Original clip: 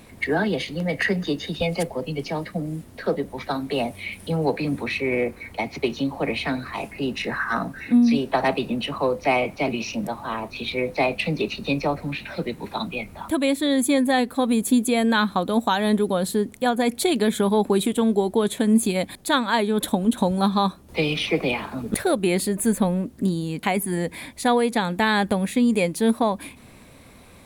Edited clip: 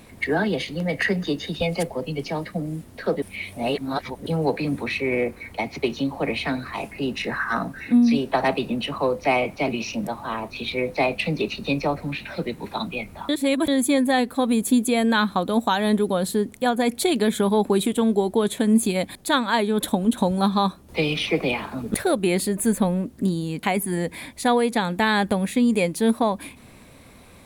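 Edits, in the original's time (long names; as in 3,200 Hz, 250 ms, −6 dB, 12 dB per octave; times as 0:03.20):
0:03.22–0:04.26: reverse
0:13.29–0:13.68: reverse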